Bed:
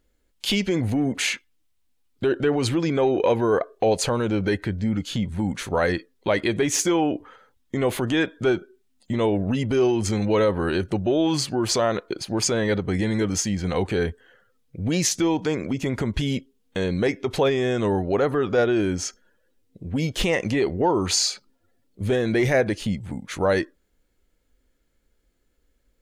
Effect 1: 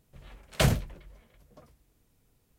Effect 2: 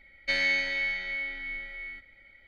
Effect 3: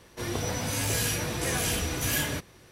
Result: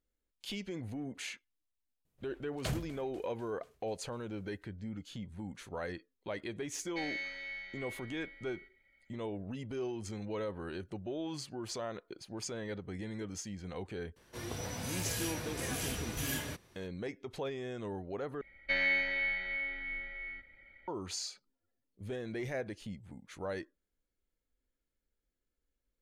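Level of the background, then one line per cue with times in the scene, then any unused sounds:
bed -18 dB
2.05 add 1 -13.5 dB + thinning echo 0.246 s, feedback 72%, level -20 dB
6.68 add 2 -13.5 dB
14.16 add 3 -9.5 dB
18.41 replace with 2 -2 dB + LPF 2700 Hz

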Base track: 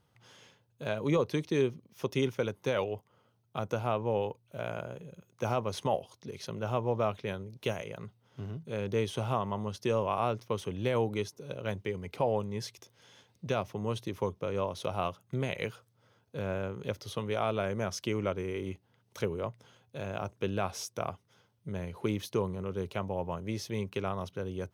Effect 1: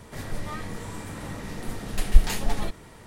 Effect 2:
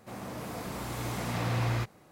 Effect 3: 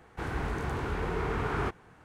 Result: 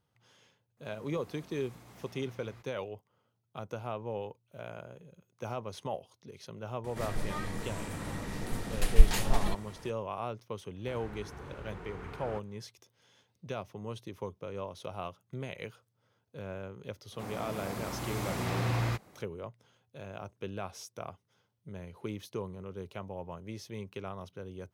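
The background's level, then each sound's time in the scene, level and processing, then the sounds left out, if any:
base track -7 dB
0.77 add 2 -16.5 dB + limiter -29 dBFS
6.84 add 1 -2.5 dB
10.69 add 3 -13.5 dB, fades 0.10 s
17.12 add 2 -1 dB

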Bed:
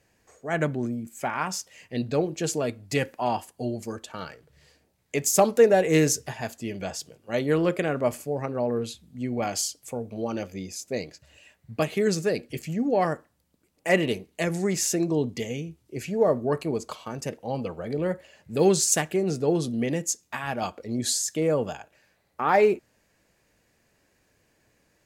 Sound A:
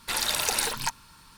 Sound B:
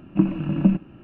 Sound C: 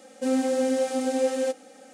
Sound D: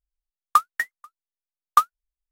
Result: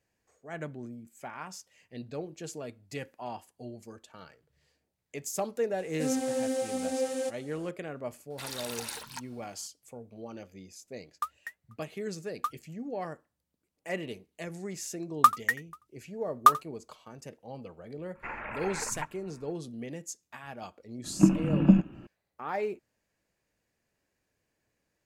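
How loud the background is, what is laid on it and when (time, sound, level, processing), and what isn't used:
bed -13 dB
5.78 add C -6.5 dB + high shelf 8100 Hz +8.5 dB
8.3 add A -12.5 dB + HPF 60 Hz
10.67 add D -16 dB
14.69 add D -1.5 dB + echo 86 ms -19.5 dB
18.15 add A -5.5 dB + steep low-pass 2500 Hz 72 dB/oct
21.04 add B -1.5 dB

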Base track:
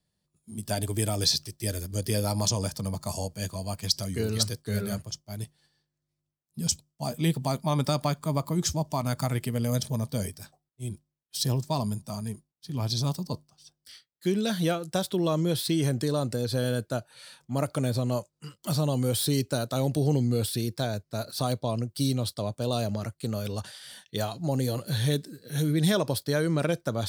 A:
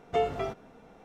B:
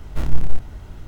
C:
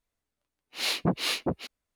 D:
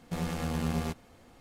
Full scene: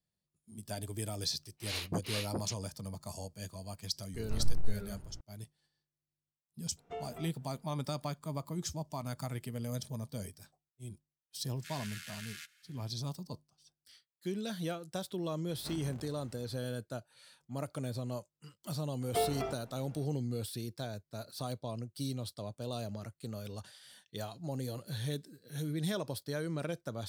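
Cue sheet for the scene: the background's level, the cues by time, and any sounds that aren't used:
base track -11 dB
0.87 add C -10 dB + LPF 12000 Hz 24 dB/oct
4.14 add B -13 dB + LPF 1100 Hz 6 dB/oct
6.77 add A -16 dB
11.53 add D -2 dB, fades 0.10 s + elliptic high-pass 1500 Hz
15.49 add B -14 dB + HPF 130 Hz
19.01 add A -5 dB

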